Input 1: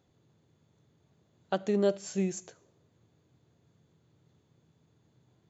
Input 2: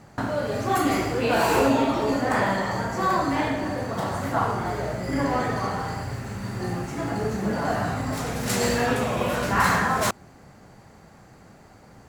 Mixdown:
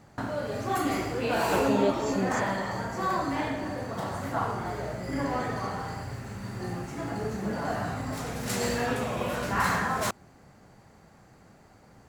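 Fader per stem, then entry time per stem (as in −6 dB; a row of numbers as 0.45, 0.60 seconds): −1.0, −5.5 decibels; 0.00, 0.00 seconds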